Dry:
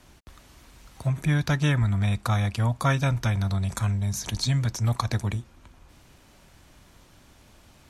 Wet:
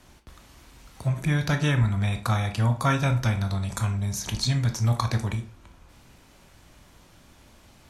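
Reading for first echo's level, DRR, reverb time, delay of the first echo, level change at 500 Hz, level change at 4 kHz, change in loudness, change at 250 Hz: no echo, 6.0 dB, 0.40 s, no echo, +1.0 dB, +1.0 dB, 0.0 dB, 0.0 dB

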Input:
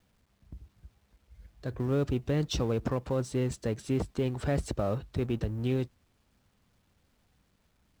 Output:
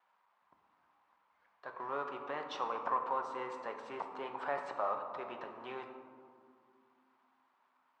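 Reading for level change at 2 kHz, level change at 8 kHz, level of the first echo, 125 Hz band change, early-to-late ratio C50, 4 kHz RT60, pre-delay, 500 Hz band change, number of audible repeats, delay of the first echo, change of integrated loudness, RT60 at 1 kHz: -0.5 dB, under -20 dB, no echo, -34.0 dB, 6.5 dB, 0.85 s, 5 ms, -9.0 dB, no echo, no echo, -8.0 dB, 2.1 s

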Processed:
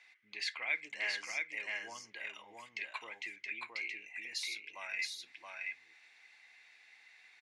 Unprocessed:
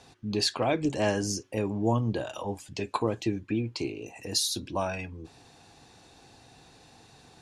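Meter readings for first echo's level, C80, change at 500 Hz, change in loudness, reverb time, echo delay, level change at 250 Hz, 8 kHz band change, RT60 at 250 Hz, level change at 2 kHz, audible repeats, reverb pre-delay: -3.0 dB, no reverb, -24.5 dB, -10.0 dB, no reverb, 673 ms, -33.0 dB, -14.0 dB, no reverb, +3.0 dB, 1, no reverb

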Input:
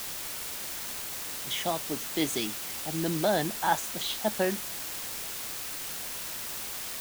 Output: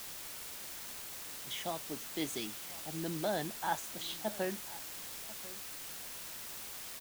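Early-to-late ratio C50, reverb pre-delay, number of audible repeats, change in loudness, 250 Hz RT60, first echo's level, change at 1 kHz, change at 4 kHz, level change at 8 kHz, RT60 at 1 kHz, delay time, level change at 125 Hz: no reverb, no reverb, 1, -8.5 dB, no reverb, -18.5 dB, -8.5 dB, -8.5 dB, -8.5 dB, no reverb, 1041 ms, -8.5 dB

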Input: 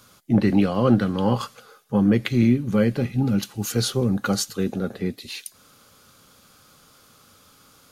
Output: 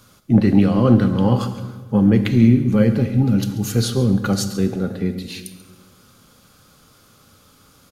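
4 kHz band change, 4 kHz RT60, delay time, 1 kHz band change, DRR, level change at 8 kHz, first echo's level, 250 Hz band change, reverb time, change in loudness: +0.5 dB, 1.0 s, 137 ms, +1.0 dB, 9.5 dB, +0.5 dB, -17.5 dB, +5.0 dB, 1.4 s, +4.5 dB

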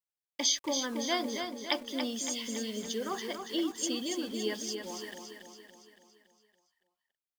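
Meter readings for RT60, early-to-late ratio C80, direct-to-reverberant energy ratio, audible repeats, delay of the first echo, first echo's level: no reverb, no reverb, no reverb, 6, 282 ms, -6.5 dB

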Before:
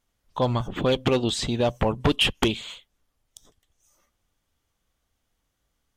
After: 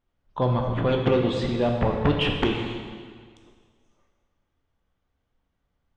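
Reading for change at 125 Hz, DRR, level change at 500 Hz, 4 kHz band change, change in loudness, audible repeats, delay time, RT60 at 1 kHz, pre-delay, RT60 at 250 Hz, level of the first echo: +2.5 dB, 1.5 dB, +1.0 dB, -5.5 dB, 0.0 dB, no echo, no echo, 1.8 s, 5 ms, 1.7 s, no echo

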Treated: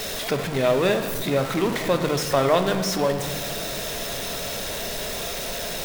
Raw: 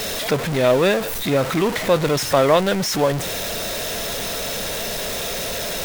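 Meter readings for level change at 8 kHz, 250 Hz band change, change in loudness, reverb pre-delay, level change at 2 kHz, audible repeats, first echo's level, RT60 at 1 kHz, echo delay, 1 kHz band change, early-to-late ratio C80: -4.0 dB, -3.0 dB, -4.0 dB, 3 ms, -4.0 dB, no echo, no echo, 1.7 s, no echo, -3.5 dB, 10.5 dB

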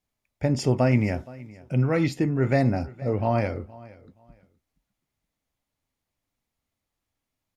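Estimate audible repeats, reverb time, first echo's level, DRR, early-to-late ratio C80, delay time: 2, no reverb, -21.0 dB, no reverb, no reverb, 471 ms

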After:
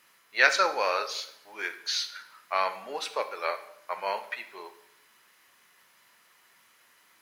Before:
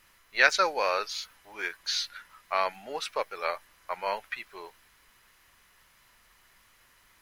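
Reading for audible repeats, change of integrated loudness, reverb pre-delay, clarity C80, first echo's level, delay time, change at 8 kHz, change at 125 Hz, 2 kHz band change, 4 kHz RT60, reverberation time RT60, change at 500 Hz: no echo, +0.5 dB, 9 ms, 15.5 dB, no echo, no echo, +0.5 dB, no reading, +0.5 dB, 0.60 s, 0.75 s, 0.0 dB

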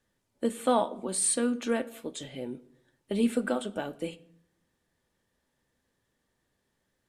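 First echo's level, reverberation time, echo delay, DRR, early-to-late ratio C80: no echo, 0.70 s, no echo, 11.0 dB, 22.0 dB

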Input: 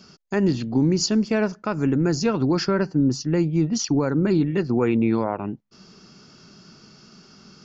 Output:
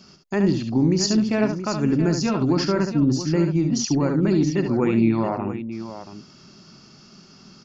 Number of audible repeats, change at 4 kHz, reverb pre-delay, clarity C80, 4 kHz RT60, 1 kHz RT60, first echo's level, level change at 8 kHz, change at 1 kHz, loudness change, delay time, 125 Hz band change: 2, +1.0 dB, no reverb, no reverb, no reverb, no reverb, -7.0 dB, no reading, +1.0 dB, +1.0 dB, 70 ms, +1.5 dB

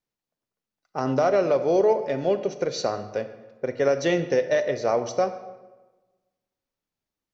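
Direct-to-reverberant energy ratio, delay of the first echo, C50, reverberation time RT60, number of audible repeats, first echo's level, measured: 10.0 dB, no echo, 11.5 dB, 1.3 s, no echo, no echo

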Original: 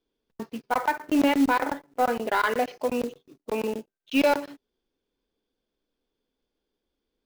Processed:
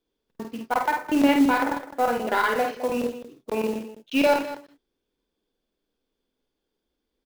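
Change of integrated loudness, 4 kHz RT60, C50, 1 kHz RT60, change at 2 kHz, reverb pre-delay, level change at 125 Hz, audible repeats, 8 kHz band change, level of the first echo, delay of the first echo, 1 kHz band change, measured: +2.0 dB, no reverb, no reverb, no reverb, +2.0 dB, no reverb, +2.0 dB, 3, +1.5 dB, -4.5 dB, 50 ms, +1.5 dB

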